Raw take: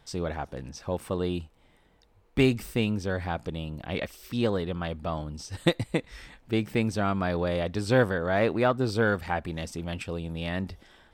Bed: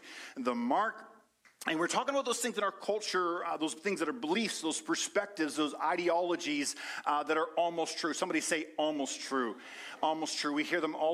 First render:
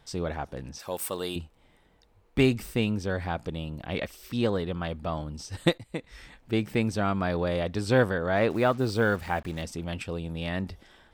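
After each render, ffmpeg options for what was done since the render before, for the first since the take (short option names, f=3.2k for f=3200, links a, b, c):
-filter_complex "[0:a]asettb=1/sr,asplit=3[a][b][c];[a]atrim=end=0.794[d];[b]atrim=start=0.79:end=1.36,asetpts=PTS-STARTPTS,afade=t=in:d=0.004:c=qsin,afade=t=out:st=0.566:d=0.004:c=qsin,aemphasis=mode=production:type=riaa[e];[c]atrim=start=1.356[f];[d][e]acrossfade=d=0.004:c1=hsin:c2=qsin[g];[g][f]acrossfade=d=0.004:c1=qsin:c2=hsin,asettb=1/sr,asplit=3[h][i][j];[h]atrim=end=8.504[k];[i]atrim=start=8.5:end=9.62,asetpts=PTS-STARTPTS,afade=t=in:d=0.004:c=qsin,afade=t=out:st=1.116:d=0.004:c=qsin,acrusher=bits=7:mix=0:aa=0.5[l];[j]atrim=start=9.616[m];[k][l]acrossfade=d=0.004:c1=hsin:c2=qsin[n];[n][m]acrossfade=d=0.004:c1=qsin:c2=hsin,asplit=2[o][p];[o]atrim=end=5.78,asetpts=PTS-STARTPTS,afade=t=out:st=5.776:d=0.004:c=hsin:silence=0.158489[q];[p]atrim=start=5.78,asetpts=PTS-STARTPTS,afade=t=in:d=0.8:c=qsin:silence=0.158489[r];[q][r]concat=n=2:v=0:a=1"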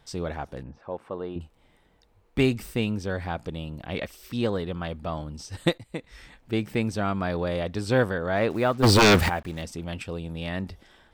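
-filter_complex "[0:a]asettb=1/sr,asplit=3[a][b][c];[a]atrim=end=0.634[d];[b]atrim=start=0.63:end=1.41,asetpts=PTS-STARTPTS,afade=t=in:d=0.004:c=qsin,afade=t=out:st=0.776:d=0.004:c=qsin,lowpass=1.2k[e];[c]atrim=start=1.406[f];[d][e]acrossfade=d=0.004:c1=hsin:c2=qsin[g];[g][f]acrossfade=d=0.004:c1=qsin:c2=hsin,asplit=3[h][i][j];[h]afade=t=out:st=8.82:d=0.02[k];[i]aeval=exprs='0.237*sin(PI/2*4.47*val(0)/0.237)':c=same,afade=t=in:st=8.82:d=0.02,afade=t=out:st=9.28:d=0.02[l];[j]afade=t=in:st=9.28:d=0.02[m];[k][l][m]amix=inputs=3:normalize=0"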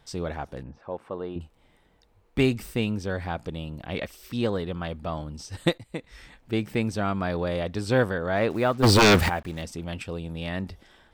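-af anull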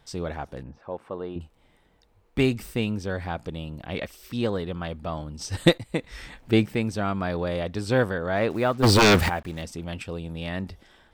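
-filter_complex "[0:a]asettb=1/sr,asplit=3[a][b][c];[a]atrim=end=5.414[d];[b]atrim=start=5.41:end=6.66,asetpts=PTS-STARTPTS,afade=t=in:d=0.004:c=qsin,afade=t=out:st=1.246:d=0.004:c=qsin,acontrast=79[e];[c]atrim=start=6.656[f];[d][e]acrossfade=d=0.004:c1=hsin:c2=qsin[g];[g][f]acrossfade=d=0.004:c1=qsin:c2=hsin"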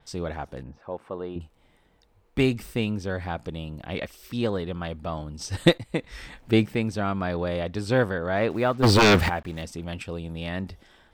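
-af "adynamicequalizer=threshold=0.00562:dfrequency=5700:dqfactor=0.7:tfrequency=5700:tqfactor=0.7:attack=5:release=100:ratio=0.375:range=3:mode=cutabove:tftype=highshelf"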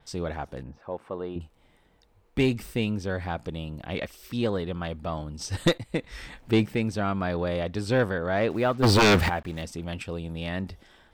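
-af "asoftclip=type=tanh:threshold=-12.5dB"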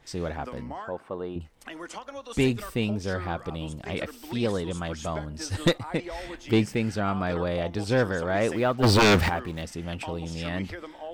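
-filter_complex "[1:a]volume=-8dB[a];[0:a][a]amix=inputs=2:normalize=0"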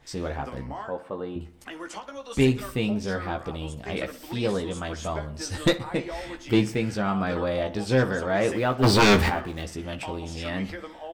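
-filter_complex "[0:a]asplit=2[a][b];[b]adelay=15,volume=-5.5dB[c];[a][c]amix=inputs=2:normalize=0,asplit=2[d][e];[e]adelay=62,lowpass=f=4.2k:p=1,volume=-16dB,asplit=2[f][g];[g]adelay=62,lowpass=f=4.2k:p=1,volume=0.53,asplit=2[h][i];[i]adelay=62,lowpass=f=4.2k:p=1,volume=0.53,asplit=2[j][k];[k]adelay=62,lowpass=f=4.2k:p=1,volume=0.53,asplit=2[l][m];[m]adelay=62,lowpass=f=4.2k:p=1,volume=0.53[n];[d][f][h][j][l][n]amix=inputs=6:normalize=0"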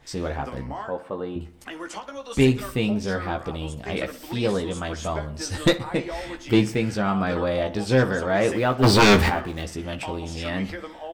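-af "volume=2.5dB"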